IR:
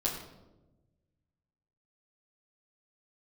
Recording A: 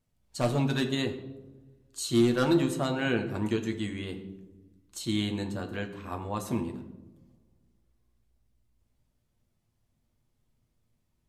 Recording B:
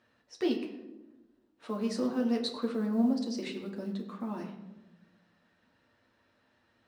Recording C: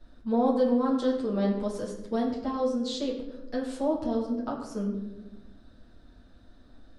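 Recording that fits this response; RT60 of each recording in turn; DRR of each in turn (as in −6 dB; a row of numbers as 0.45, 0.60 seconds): C; 1.1, 1.1, 1.1 seconds; 4.0, 0.0, −7.0 decibels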